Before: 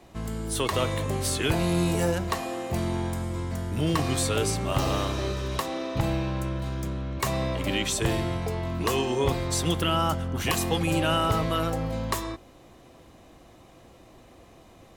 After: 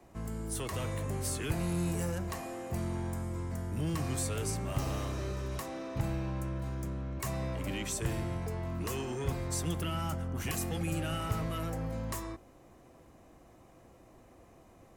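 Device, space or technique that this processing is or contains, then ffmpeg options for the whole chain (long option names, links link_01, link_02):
one-band saturation: -filter_complex "[0:a]acrossover=split=220|2100[link_01][link_02][link_03];[link_02]asoftclip=type=tanh:threshold=-32dB[link_04];[link_01][link_04][link_03]amix=inputs=3:normalize=0,asettb=1/sr,asplit=3[link_05][link_06][link_07];[link_05]atrim=end=10.504[link_08];[link_06]atrim=start=10.5:end=11.2,asetpts=PTS-STARTPTS,afade=type=in:duration=0.004:curve=qsin,afade=type=out:start_time=0.696:duration=0.004:curve=qsin,bandreject=frequency=990:width=6.8[link_09];[link_07]atrim=start=11.196[link_10];[link_08][link_09]acrossfade=duration=0.004:curve1=hsin:curve2=qsin[link_11];[link_11][link_10]acrossfade=duration=0.004:curve1=qsin:curve2=hsin,equalizer=frequency=3600:width_type=o:width=0.93:gain=-9.5,volume=-5.5dB"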